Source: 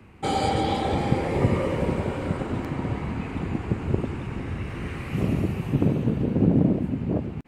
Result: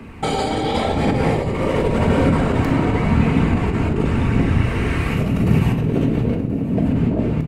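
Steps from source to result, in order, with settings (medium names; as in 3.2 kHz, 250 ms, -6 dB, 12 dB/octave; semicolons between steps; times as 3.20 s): hum notches 50/100/150/200 Hz; compressor with a negative ratio -28 dBFS, ratio -1; phaser 0.91 Hz, delay 3.3 ms, feedback 28%; on a send: delay 1030 ms -17.5 dB; on the sum: simulated room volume 710 m³, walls furnished, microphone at 1.6 m; trim +7.5 dB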